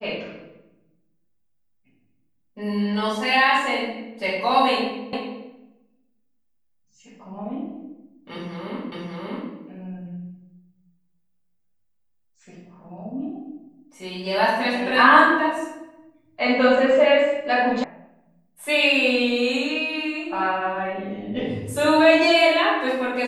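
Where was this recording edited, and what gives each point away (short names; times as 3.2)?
5.13 repeat of the last 0.29 s
8.92 repeat of the last 0.59 s
17.84 sound cut off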